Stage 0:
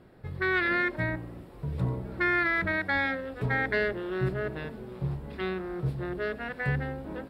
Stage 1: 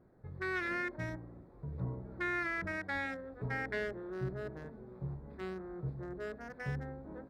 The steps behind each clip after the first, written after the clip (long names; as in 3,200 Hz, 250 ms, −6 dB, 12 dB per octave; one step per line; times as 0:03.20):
adaptive Wiener filter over 15 samples
level −9 dB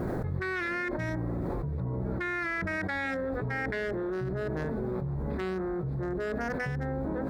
envelope flattener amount 100%
level +1.5 dB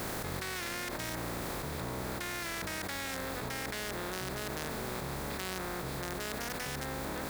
compressing power law on the bin magnitudes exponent 0.37
level −5.5 dB